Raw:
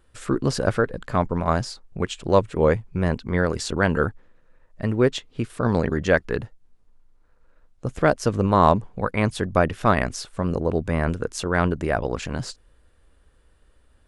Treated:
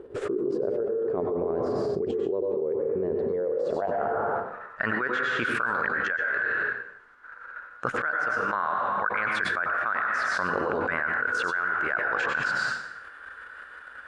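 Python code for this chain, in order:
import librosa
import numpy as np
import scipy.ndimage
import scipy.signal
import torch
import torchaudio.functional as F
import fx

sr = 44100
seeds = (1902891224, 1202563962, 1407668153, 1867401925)

y = fx.level_steps(x, sr, step_db=9)
y = fx.filter_sweep_bandpass(y, sr, from_hz=410.0, to_hz=1500.0, start_s=3.2, end_s=4.75, q=8.0)
y = fx.rev_plate(y, sr, seeds[0], rt60_s=0.7, hf_ratio=0.95, predelay_ms=85, drr_db=3.5)
y = fx.env_flatten(y, sr, amount_pct=100)
y = F.gain(torch.from_numpy(y), -2.0).numpy()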